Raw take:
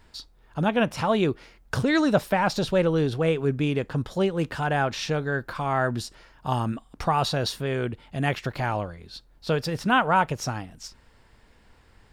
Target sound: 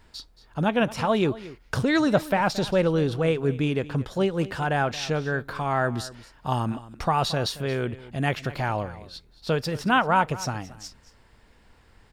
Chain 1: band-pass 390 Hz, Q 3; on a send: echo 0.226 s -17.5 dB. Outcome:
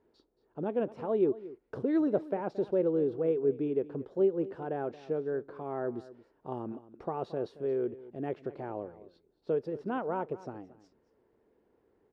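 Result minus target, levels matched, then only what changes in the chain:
500 Hz band +3.5 dB
remove: band-pass 390 Hz, Q 3

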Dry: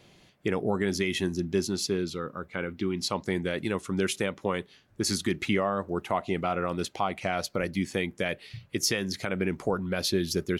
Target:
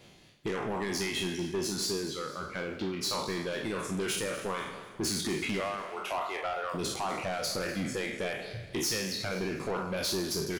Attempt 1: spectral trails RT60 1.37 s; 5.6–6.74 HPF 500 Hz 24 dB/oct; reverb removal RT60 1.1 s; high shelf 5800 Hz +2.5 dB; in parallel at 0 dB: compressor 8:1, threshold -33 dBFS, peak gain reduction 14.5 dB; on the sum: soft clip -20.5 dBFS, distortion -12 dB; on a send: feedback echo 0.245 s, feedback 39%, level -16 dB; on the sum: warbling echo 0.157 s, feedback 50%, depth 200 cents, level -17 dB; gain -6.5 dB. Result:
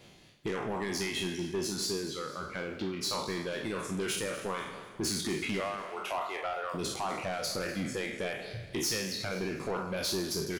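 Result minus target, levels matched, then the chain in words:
compressor: peak gain reduction +6 dB
spectral trails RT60 1.37 s; 5.6–6.74 HPF 500 Hz 24 dB/oct; reverb removal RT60 1.1 s; high shelf 5800 Hz +2.5 dB; in parallel at 0 dB: compressor 8:1, threshold -26 dBFS, peak gain reduction 8.5 dB; on the sum: soft clip -20.5 dBFS, distortion -10 dB; on a send: feedback echo 0.245 s, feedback 39%, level -16 dB; on the sum: warbling echo 0.157 s, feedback 50%, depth 200 cents, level -17 dB; gain -6.5 dB

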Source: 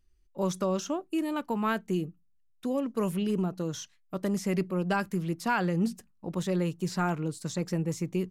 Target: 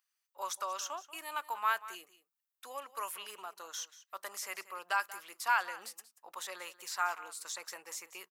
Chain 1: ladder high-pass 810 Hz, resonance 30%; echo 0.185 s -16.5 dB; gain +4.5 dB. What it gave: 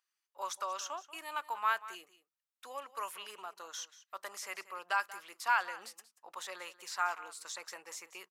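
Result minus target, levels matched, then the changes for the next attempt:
8000 Hz band -2.5 dB
add after ladder high-pass: high shelf 11000 Hz +12 dB

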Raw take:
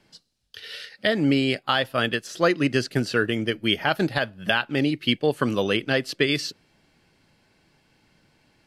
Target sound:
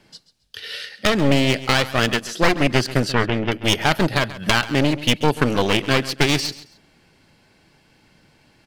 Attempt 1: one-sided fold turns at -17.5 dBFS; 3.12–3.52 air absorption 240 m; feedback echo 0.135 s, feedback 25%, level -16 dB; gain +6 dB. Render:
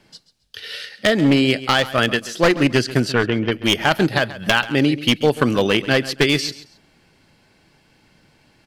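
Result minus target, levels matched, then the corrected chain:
one-sided fold: distortion -11 dB
one-sided fold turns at -25 dBFS; 3.12–3.52 air absorption 240 m; feedback echo 0.135 s, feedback 25%, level -16 dB; gain +6 dB

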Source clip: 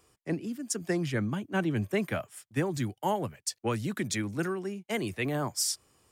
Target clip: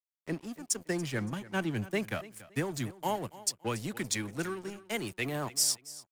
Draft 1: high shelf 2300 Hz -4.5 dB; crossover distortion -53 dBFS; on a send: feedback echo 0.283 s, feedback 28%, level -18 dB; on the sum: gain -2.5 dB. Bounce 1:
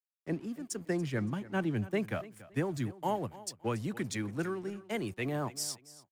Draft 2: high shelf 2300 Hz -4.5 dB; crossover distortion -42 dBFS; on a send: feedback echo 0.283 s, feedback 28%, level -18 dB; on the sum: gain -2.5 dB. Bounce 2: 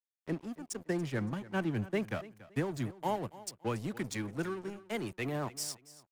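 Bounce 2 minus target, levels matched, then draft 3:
4000 Hz band -6.0 dB
high shelf 2300 Hz +6 dB; crossover distortion -42 dBFS; on a send: feedback echo 0.283 s, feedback 28%, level -18 dB; on the sum: gain -2.5 dB

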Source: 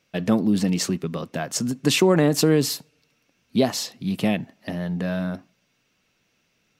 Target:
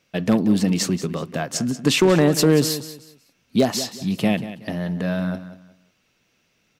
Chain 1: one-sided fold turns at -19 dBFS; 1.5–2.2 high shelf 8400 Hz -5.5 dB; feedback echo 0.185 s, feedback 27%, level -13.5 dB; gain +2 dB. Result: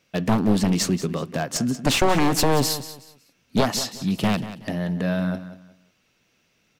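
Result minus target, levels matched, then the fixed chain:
one-sided fold: distortion +23 dB
one-sided fold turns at -9 dBFS; 1.5–2.2 high shelf 8400 Hz -5.5 dB; feedback echo 0.185 s, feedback 27%, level -13.5 dB; gain +2 dB

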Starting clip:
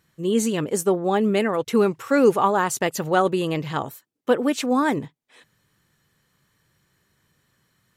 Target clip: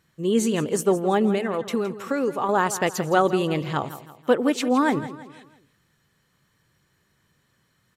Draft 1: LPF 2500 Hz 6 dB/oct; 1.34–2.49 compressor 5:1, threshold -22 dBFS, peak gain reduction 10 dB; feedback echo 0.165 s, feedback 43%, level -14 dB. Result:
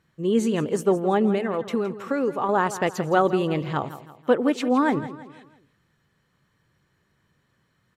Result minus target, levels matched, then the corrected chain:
8000 Hz band -7.0 dB
LPF 9300 Hz 6 dB/oct; 1.34–2.49 compressor 5:1, threshold -22 dBFS, peak gain reduction 10 dB; feedback echo 0.165 s, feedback 43%, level -14 dB

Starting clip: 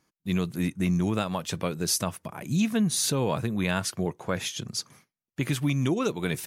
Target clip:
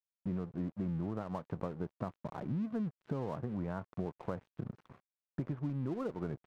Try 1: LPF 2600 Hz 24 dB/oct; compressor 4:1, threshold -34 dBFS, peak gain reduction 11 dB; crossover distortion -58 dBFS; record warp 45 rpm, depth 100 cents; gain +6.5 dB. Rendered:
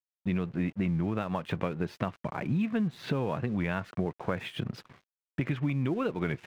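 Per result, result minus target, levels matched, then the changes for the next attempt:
2000 Hz band +9.5 dB; compressor: peak gain reduction -6.5 dB
change: LPF 1200 Hz 24 dB/oct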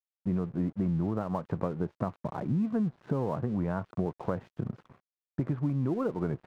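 compressor: peak gain reduction -7 dB
change: compressor 4:1, threshold -43 dBFS, peak gain reduction 18 dB

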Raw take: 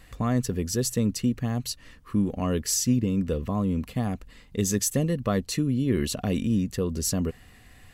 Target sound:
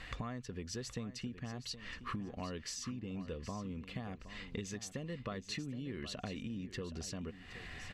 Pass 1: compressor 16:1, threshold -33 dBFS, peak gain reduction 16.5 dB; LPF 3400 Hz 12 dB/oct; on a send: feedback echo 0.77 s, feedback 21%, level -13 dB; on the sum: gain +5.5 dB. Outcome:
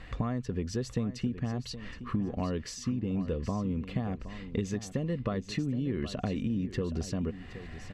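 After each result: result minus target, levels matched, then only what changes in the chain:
compressor: peak gain reduction -6 dB; 1000 Hz band -3.5 dB
change: compressor 16:1, threshold -39.5 dBFS, peak gain reduction 22.5 dB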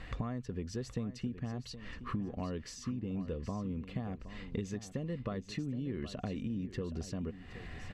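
1000 Hz band -3.0 dB
add after LPF: tilt shelf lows -5.5 dB, about 1100 Hz

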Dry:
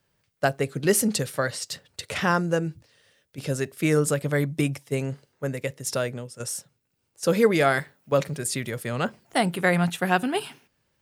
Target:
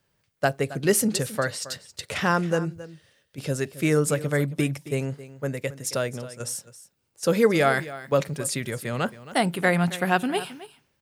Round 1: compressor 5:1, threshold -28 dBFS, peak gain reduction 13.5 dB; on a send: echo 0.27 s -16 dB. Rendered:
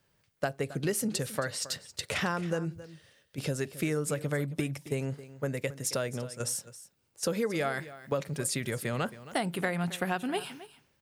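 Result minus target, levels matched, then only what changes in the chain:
compressor: peak gain reduction +13.5 dB
remove: compressor 5:1, threshold -28 dBFS, peak gain reduction 13.5 dB

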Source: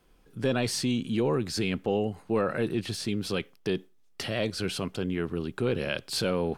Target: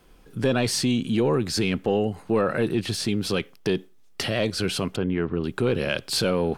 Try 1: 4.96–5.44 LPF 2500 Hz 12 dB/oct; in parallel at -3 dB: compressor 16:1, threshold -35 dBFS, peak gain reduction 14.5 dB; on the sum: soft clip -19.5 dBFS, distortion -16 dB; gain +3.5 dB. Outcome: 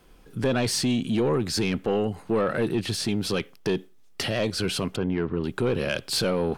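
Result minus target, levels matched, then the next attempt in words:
soft clip: distortion +13 dB
4.96–5.44 LPF 2500 Hz 12 dB/oct; in parallel at -3 dB: compressor 16:1, threshold -35 dBFS, peak gain reduction 14.5 dB; on the sum: soft clip -11 dBFS, distortion -30 dB; gain +3.5 dB

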